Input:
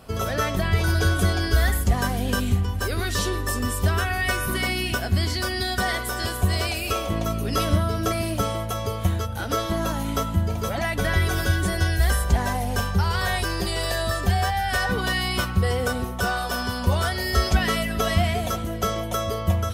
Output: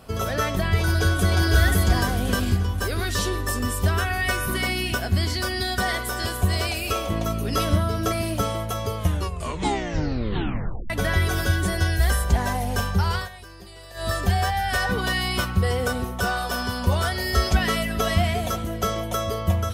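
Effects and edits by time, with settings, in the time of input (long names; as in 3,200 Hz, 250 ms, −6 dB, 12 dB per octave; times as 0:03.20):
0:00.78–0:01.50: delay throw 530 ms, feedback 40%, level −1.5 dB
0:08.97: tape stop 1.93 s
0:13.14–0:14.09: duck −17.5 dB, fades 0.15 s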